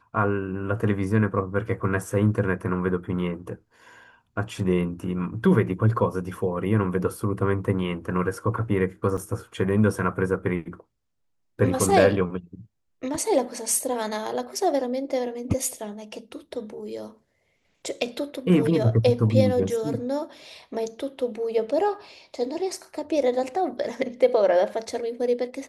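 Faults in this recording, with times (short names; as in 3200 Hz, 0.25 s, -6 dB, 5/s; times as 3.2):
9.17–9.18 gap 6.7 ms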